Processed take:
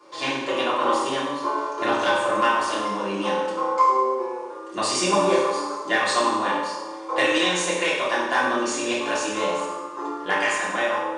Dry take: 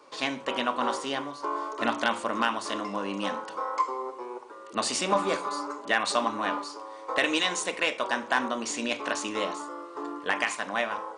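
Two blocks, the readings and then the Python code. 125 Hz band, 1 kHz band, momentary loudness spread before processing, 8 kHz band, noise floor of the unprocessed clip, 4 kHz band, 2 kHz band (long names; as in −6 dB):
+7.0 dB, +7.0 dB, 9 LU, +5.0 dB, −44 dBFS, +4.5 dB, +5.0 dB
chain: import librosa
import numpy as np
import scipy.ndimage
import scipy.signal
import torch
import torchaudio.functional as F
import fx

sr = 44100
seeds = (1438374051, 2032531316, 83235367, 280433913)

y = fx.rev_fdn(x, sr, rt60_s=1.1, lf_ratio=1.0, hf_ratio=0.85, size_ms=17.0, drr_db=-8.0)
y = F.gain(torch.from_numpy(y), -3.0).numpy()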